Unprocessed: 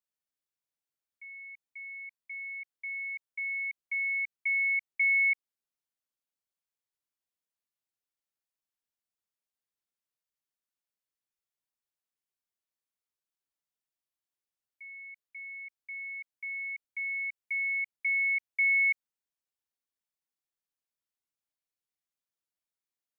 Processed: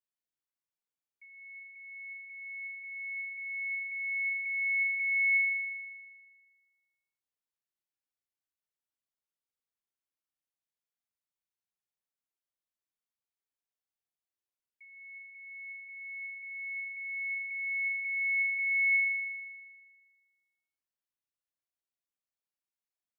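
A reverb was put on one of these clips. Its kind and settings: spring tank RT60 1.6 s, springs 33 ms, chirp 40 ms, DRR 1.5 dB; gain -7 dB

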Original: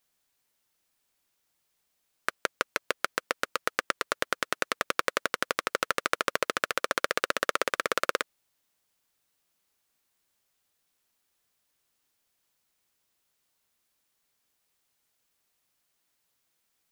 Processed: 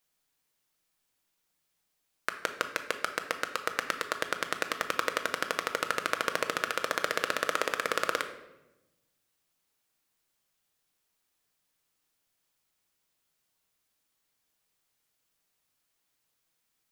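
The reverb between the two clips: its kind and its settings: shoebox room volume 430 m³, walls mixed, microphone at 0.58 m; gain -2.5 dB

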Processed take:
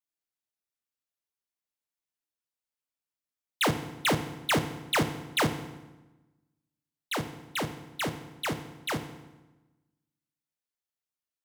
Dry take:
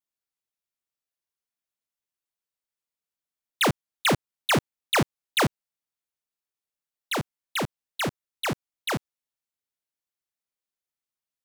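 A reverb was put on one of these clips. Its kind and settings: FDN reverb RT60 1.1 s, low-frequency decay 1.25×, high-frequency decay 0.8×, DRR 7.5 dB; gain -4 dB

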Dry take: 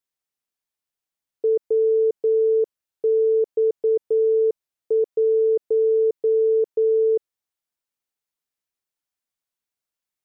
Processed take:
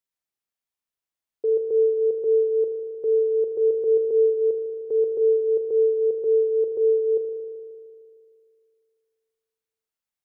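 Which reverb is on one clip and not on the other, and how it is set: spring tank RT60 2.3 s, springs 38 ms, chirp 50 ms, DRR 4 dB; gain -3.5 dB

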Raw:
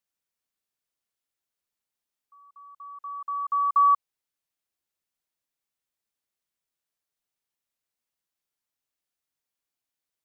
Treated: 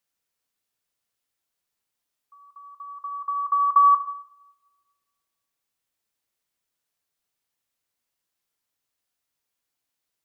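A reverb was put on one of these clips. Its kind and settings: two-slope reverb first 0.72 s, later 1.8 s, from -27 dB, DRR 8.5 dB; gain +4.5 dB

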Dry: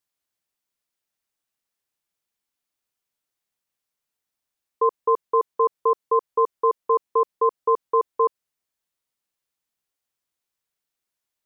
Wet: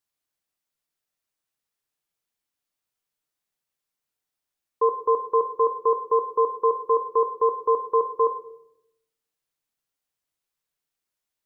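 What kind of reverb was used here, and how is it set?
shoebox room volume 190 m³, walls mixed, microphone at 0.45 m; gain -2 dB

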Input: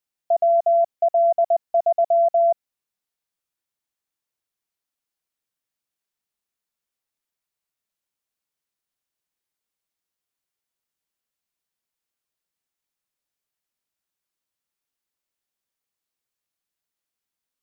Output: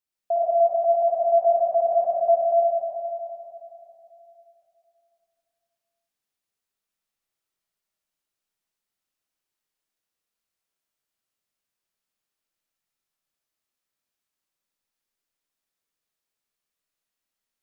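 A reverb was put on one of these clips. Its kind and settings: digital reverb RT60 3 s, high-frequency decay 0.9×, pre-delay 25 ms, DRR -5.5 dB; gain -5 dB

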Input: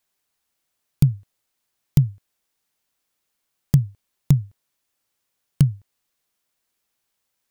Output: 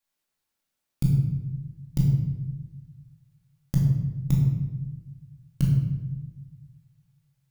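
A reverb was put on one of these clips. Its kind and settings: shoebox room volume 550 m³, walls mixed, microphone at 2.3 m; gain -10 dB

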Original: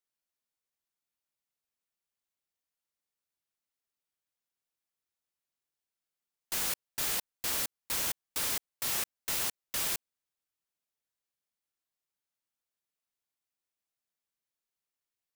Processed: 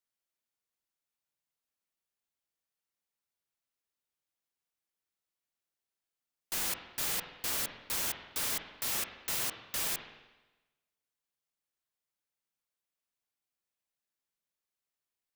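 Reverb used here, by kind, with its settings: spring tank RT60 1.1 s, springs 44/50 ms, chirp 75 ms, DRR 6 dB; gain -1.5 dB

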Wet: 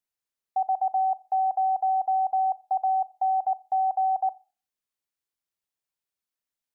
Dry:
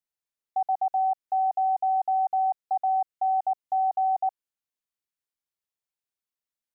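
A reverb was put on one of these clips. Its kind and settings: Schroeder reverb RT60 0.36 s, combs from 27 ms, DRR 18.5 dB; gain +1 dB

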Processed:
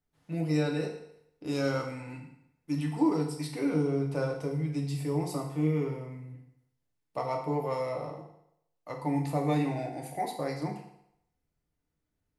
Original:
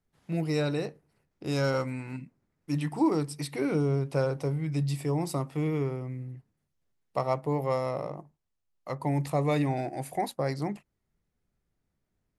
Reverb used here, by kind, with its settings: FDN reverb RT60 0.76 s, low-frequency decay 0.85×, high-frequency decay 0.95×, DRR 0 dB; gain -5.5 dB

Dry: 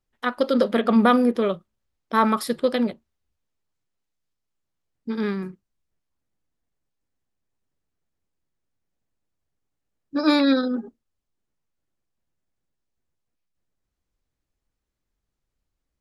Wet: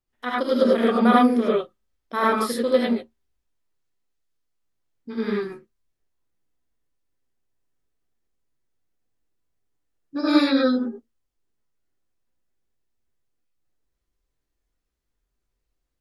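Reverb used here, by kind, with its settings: non-linear reverb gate 0.12 s rising, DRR -5.5 dB; gain -5.5 dB

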